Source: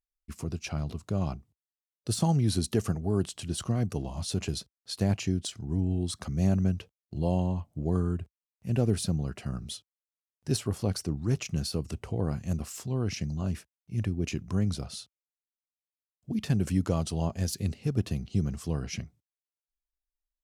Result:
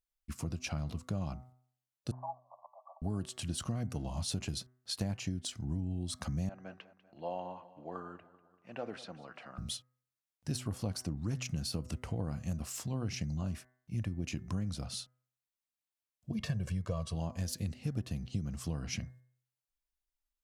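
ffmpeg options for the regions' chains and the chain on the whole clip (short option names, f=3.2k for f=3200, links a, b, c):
-filter_complex "[0:a]asettb=1/sr,asplit=3[a][b][c];[a]atrim=end=2.114[d];[b]atrim=start=2.11:end=3.02,asetpts=PTS-STARTPTS,afade=t=in:d=0.004:c=qsin,afade=t=out:st=0.906:d=0.004:c=qsin,aderivative,aeval=exprs='0.106*sin(PI/2*2.82*val(0)/0.106)':c=same,asuperpass=centerf=800:order=20:qfactor=1.4[e];[c]atrim=start=3.016[f];[d][e]acrossfade=d=0.004:c1=hsin:c2=qsin[g];[g][f]acrossfade=d=0.004:c1=qsin:c2=hsin,asettb=1/sr,asplit=3[h][i][j];[h]atrim=end=6.494[k];[i]atrim=start=6.49:end=9.58,asetpts=PTS-STARTPTS,afade=t=in:d=0.004:c=qsin,afade=t=out:st=3.086:d=0.004:c=qsin,highpass=630,lowpass=2.2k,aecho=1:1:194|388|582|776|970:0.126|0.0705|0.0395|0.0221|0.0124,atrim=end_sample=136269[l];[j]atrim=start=9.576[m];[k][l]acrossfade=d=0.004:c1=hsin:c2=qsin[n];[n][m]acrossfade=d=0.004:c1=qsin:c2=hsin,asettb=1/sr,asplit=3[o][p][q];[o]atrim=end=16.314[r];[p]atrim=start=16.31:end=17.15,asetpts=PTS-STARTPTS,afade=t=in:d=0.004:c=qsin,afade=t=out:st=0.836:d=0.004:c=qsin,highshelf=f=6.3k:g=-9.5,aecho=1:1:1.8:0.86,atrim=end_sample=37044[s];[q]atrim=start=17.146[t];[r][s]acrossfade=d=0.004:c1=hsin:c2=qsin[u];[u][t]acrossfade=d=0.004:c1=qsin:c2=hsin,equalizer=f=400:w=5:g=-10,bandreject=f=126:t=h:w=4,bandreject=f=252:t=h:w=4,bandreject=f=378:t=h:w=4,bandreject=f=504:t=h:w=4,bandreject=f=630:t=h:w=4,bandreject=f=756:t=h:w=4,bandreject=f=882:t=h:w=4,bandreject=f=1.008k:t=h:w=4,bandreject=f=1.134k:t=h:w=4,bandreject=f=1.26k:t=h:w=4,bandreject=f=1.386k:t=h:w=4,bandreject=f=1.512k:t=h:w=4,bandreject=f=1.638k:t=h:w=4,bandreject=f=1.764k:t=h:w=4,bandreject=f=1.89k:t=h:w=4,bandreject=f=2.016k:t=h:w=4,bandreject=f=2.142k:t=h:w=4,acompressor=threshold=-32dB:ratio=6"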